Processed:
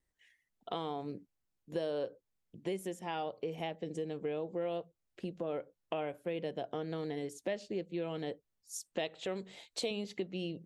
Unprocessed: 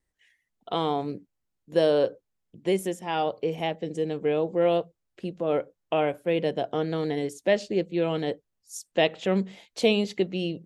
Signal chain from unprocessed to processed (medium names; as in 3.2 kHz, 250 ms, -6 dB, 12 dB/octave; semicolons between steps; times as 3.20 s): 8.99–9.91 s: graphic EQ with 31 bands 200 Hz -9 dB, 4 kHz +6 dB, 8 kHz +7 dB; compression 3:1, threshold -33 dBFS, peak gain reduction 12.5 dB; trim -3.5 dB